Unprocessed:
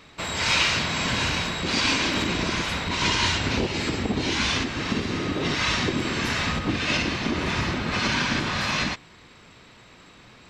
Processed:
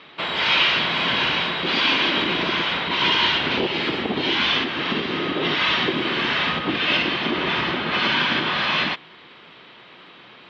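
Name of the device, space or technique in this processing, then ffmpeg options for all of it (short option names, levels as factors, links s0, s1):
overdrive pedal into a guitar cabinet: -filter_complex "[0:a]asplit=2[s0][s1];[s1]highpass=f=720:p=1,volume=3.98,asoftclip=type=tanh:threshold=0.422[s2];[s0][s2]amix=inputs=2:normalize=0,lowpass=f=2100:p=1,volume=0.501,highpass=91,equalizer=f=97:t=q:w=4:g=-9,equalizer=f=160:t=q:w=4:g=3,equalizer=f=360:t=q:w=4:g=4,equalizer=f=3200:t=q:w=4:g=9,lowpass=f=4500:w=0.5412,lowpass=f=4500:w=1.3066"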